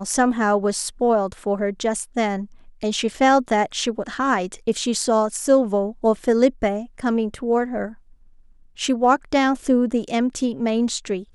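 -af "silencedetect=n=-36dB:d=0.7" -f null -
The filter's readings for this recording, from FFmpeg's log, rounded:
silence_start: 7.93
silence_end: 8.78 | silence_duration: 0.85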